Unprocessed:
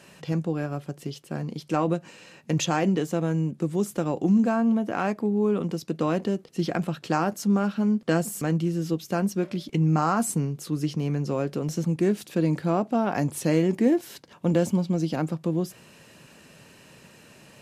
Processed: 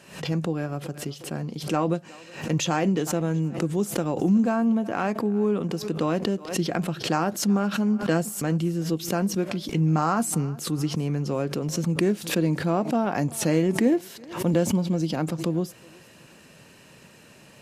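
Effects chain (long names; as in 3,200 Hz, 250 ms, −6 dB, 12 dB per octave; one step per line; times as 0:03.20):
feedback echo with a high-pass in the loop 369 ms, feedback 44%, high-pass 410 Hz, level −21 dB
background raised ahead of every attack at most 110 dB per second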